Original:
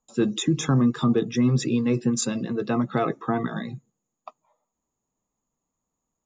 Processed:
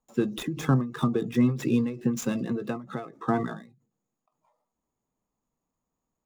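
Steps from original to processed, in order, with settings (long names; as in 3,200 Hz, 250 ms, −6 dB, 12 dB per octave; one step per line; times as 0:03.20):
running median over 9 samples
every ending faded ahead of time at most 120 dB per second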